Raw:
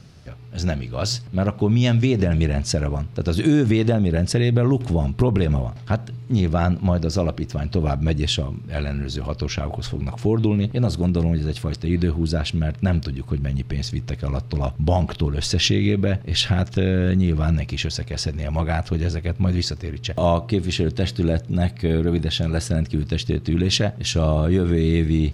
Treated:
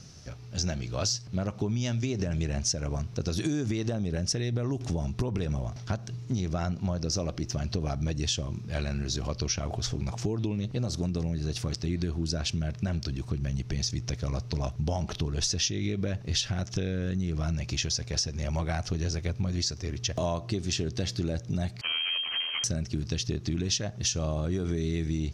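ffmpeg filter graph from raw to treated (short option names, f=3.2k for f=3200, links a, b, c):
-filter_complex "[0:a]asettb=1/sr,asplit=3[a][b][c];[a]atrim=end=21.814[d];[b]atrim=start=21.81:end=22.64,asetpts=PTS-STARTPTS,afade=t=in:d=0.004:c=qsin,afade=t=out:st=0.826:d=0.004:c=qsin,highpass=320,aeval=exprs='abs(val(0))':c=same,lowpass=f=2.7k:t=q:w=0.5098,lowpass=f=2.7k:t=q:w=0.6013,lowpass=f=2.7k:t=q:w=0.9,lowpass=f=2.7k:t=q:w=2.563,afreqshift=-3200[e];[c]atrim=start=22.636[f];[d][e]acrossfade=d=0.004:c1=hsin:c2=qsin[g];[g][f]acrossfade=d=0.004:c1=qsin:c2=hsin,equalizer=f=5.9k:w=2.4:g=15,acompressor=threshold=-22dB:ratio=6,volume=-4dB"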